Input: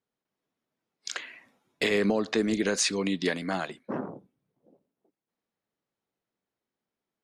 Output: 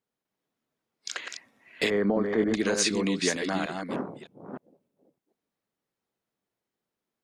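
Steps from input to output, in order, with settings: chunks repeated in reverse 305 ms, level -5 dB; 1.90–2.54 s: Savitzky-Golay filter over 41 samples

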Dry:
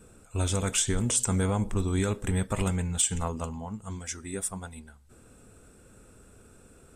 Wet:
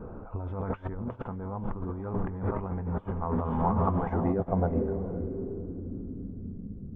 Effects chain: hum notches 60/120 Hz; echo that smears into a reverb 493 ms, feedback 51%, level -10 dB; compressor with a negative ratio -37 dBFS, ratio -1; dynamic bell 1.9 kHz, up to +6 dB, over -54 dBFS, Q 1.2; low-pass sweep 970 Hz -> 200 Hz, 3.81–6.73 s; tape spacing loss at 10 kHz 33 dB; trim +6.5 dB

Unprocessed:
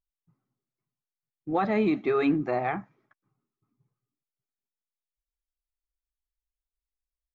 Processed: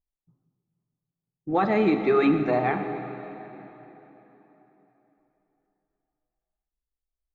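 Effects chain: level-controlled noise filter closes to 690 Hz, open at -26.5 dBFS; plate-style reverb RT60 3.7 s, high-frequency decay 0.8×, DRR 6.5 dB; trim +3 dB

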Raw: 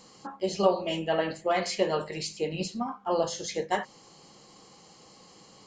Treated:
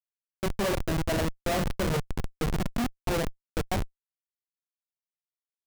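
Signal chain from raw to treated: harmonic-percussive split harmonic +6 dB; 1.47–2.89 s: bass shelf 200 Hz +6.5 dB; Schmitt trigger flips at -21.5 dBFS

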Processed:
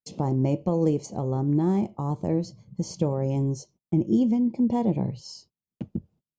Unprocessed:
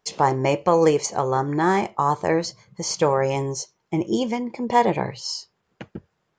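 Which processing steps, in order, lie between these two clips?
treble shelf 4.1 kHz -4 dB; in parallel at -0.5 dB: compression, threshold -27 dBFS, peak gain reduction 14 dB; on the sum: FFT filter 140 Hz 0 dB, 260 Hz +2 dB, 420 Hz -11 dB, 600 Hz -11 dB, 1.7 kHz -28 dB, 2.7 kHz -18 dB, 11 kHz -13 dB; gate -54 dBFS, range -29 dB

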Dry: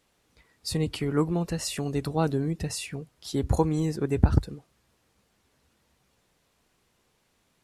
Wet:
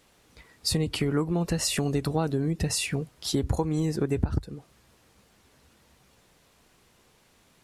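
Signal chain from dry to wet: compression 6:1, threshold -31 dBFS, peak gain reduction 17.5 dB; trim +8 dB

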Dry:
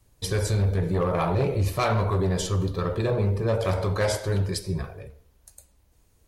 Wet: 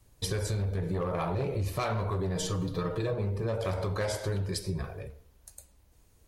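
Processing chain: 2.35–3.14 s: comb 6.4 ms, depth 72%; compression, threshold -28 dBFS, peak gain reduction 10 dB

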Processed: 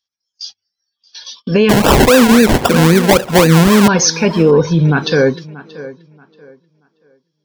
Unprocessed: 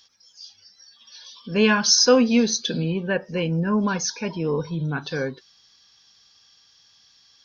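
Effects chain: gate -43 dBFS, range -38 dB; dynamic bell 430 Hz, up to +5 dB, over -29 dBFS, Q 0.84; 1.69–3.88 s: decimation with a swept rate 29×, swing 60% 3.8 Hz; tape echo 631 ms, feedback 27%, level -19 dB, low-pass 3.2 kHz; loudness maximiser +15.5 dB; trim -1 dB

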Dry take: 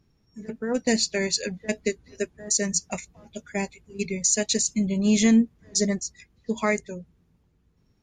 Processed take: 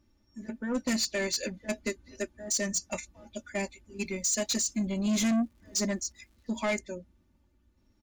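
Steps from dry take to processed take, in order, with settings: comb 3.4 ms, depth 89%; saturation -19.5 dBFS, distortion -9 dB; 4.05–6.68 s: crackle 270 per s -54 dBFS; trim -4 dB

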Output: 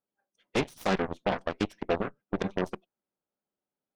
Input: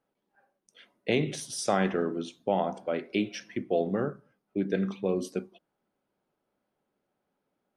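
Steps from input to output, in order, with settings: time stretch by phase-locked vocoder 0.51×; Chebyshev shaper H 5 -25 dB, 6 -20 dB, 7 -13 dB, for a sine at -16 dBFS

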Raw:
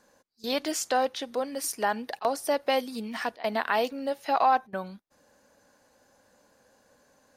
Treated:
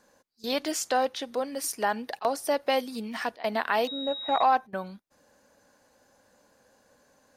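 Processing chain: 3.87–4.43 s: class-D stage that switches slowly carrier 3.8 kHz

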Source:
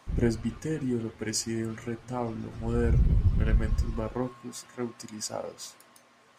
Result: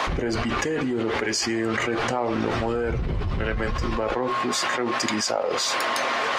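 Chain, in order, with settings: three-band isolator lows -16 dB, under 360 Hz, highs -17 dB, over 5.1 kHz; level flattener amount 100%; trim +2.5 dB

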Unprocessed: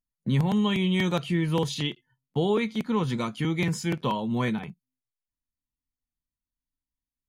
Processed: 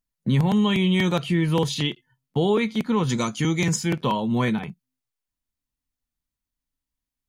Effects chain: 3.09–3.76 s: peaking EQ 6.5 kHz +14 dB 0.6 oct; in parallel at -1 dB: peak limiter -18.5 dBFS, peak gain reduction 6 dB; on the sum: trim -1 dB

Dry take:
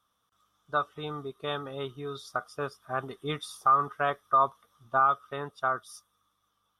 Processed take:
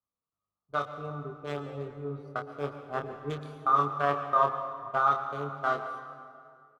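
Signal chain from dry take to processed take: local Wiener filter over 25 samples; peak limiter -18 dBFS, peak gain reduction 4 dB; doubling 28 ms -5.5 dB; reverberation RT60 3.2 s, pre-delay 108 ms, DRR 6 dB; three bands expanded up and down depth 40%

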